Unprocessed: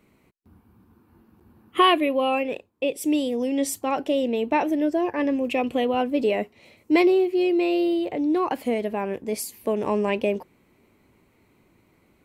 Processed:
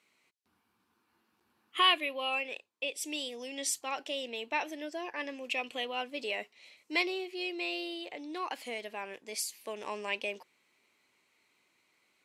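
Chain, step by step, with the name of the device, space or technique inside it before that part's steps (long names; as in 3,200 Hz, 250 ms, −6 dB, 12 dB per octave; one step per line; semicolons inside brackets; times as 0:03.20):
piezo pickup straight into a mixer (low-pass filter 5,100 Hz 12 dB per octave; first difference)
level +7 dB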